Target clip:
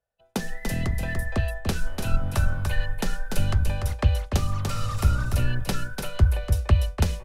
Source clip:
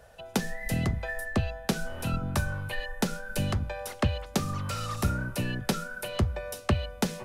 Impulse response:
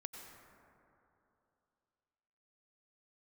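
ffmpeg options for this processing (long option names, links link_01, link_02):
-filter_complex "[0:a]aecho=1:1:292:0.562,agate=range=-33dB:threshold=-31dB:ratio=3:detection=peak,asplit=2[link_01][link_02];[link_02]asoftclip=type=tanh:threshold=-23dB,volume=-10dB[link_03];[link_01][link_03]amix=inputs=2:normalize=0,asubboost=boost=6:cutoff=81,volume=-1.5dB"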